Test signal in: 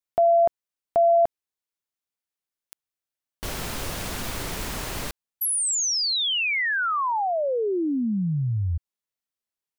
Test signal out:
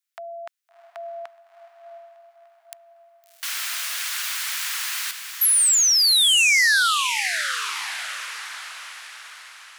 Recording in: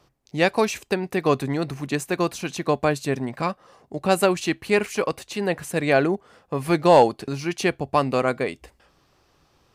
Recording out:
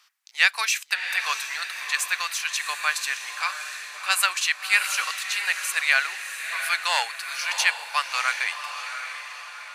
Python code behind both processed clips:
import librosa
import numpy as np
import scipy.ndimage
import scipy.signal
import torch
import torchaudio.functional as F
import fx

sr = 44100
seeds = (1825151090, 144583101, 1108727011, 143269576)

p1 = scipy.signal.sosfilt(scipy.signal.butter(4, 1400.0, 'highpass', fs=sr, output='sos'), x)
p2 = p1 + fx.echo_diffused(p1, sr, ms=691, feedback_pct=49, wet_db=-8, dry=0)
y = p2 * librosa.db_to_amplitude(7.0)